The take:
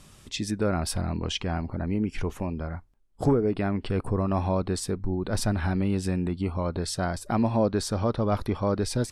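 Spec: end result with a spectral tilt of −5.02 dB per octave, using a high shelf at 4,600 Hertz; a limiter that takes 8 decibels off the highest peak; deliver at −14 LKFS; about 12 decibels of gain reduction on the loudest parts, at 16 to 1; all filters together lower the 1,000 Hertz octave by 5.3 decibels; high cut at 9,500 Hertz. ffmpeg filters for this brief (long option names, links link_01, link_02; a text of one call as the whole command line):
ffmpeg -i in.wav -af "lowpass=9500,equalizer=frequency=1000:width_type=o:gain=-8,highshelf=frequency=4600:gain=8,acompressor=threshold=-29dB:ratio=16,volume=23.5dB,alimiter=limit=-4dB:level=0:latency=1" out.wav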